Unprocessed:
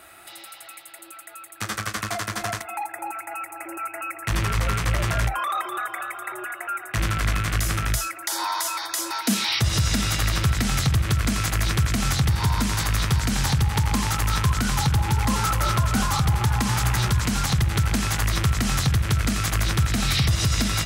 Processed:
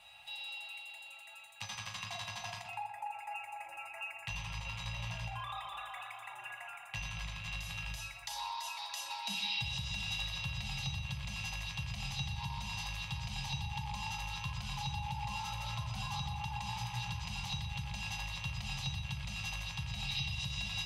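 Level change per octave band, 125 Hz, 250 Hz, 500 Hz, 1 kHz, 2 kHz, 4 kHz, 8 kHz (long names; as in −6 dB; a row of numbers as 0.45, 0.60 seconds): −19.0, −22.5, −23.0, −14.5, −13.0, −11.0, −19.5 decibels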